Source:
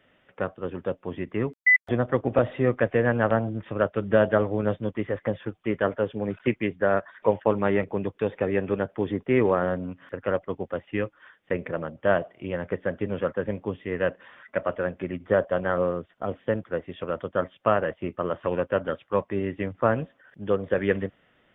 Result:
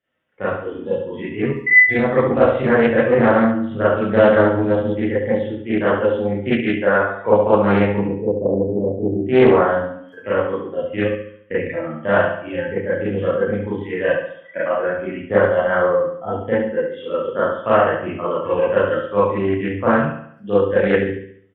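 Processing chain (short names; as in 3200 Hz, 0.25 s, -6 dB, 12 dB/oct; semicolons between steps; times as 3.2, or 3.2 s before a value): 8.03–9.24 steep low-pass 760 Hz 96 dB/oct; spectral noise reduction 20 dB; 2.63–3.15 reverse; feedback echo 70 ms, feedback 47%, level -7 dB; reverb RT60 0.35 s, pre-delay 31 ms, DRR -9.5 dB; Doppler distortion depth 0.26 ms; gain -2 dB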